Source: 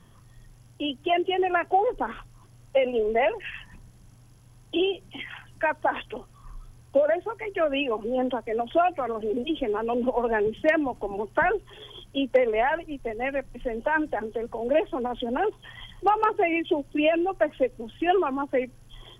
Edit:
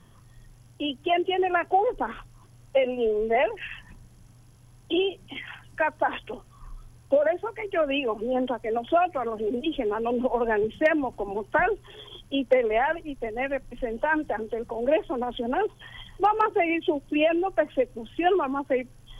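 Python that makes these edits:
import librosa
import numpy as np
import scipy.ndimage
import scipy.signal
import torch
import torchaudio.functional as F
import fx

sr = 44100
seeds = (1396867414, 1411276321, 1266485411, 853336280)

y = fx.edit(x, sr, fx.stretch_span(start_s=2.84, length_s=0.34, factor=1.5), tone=tone)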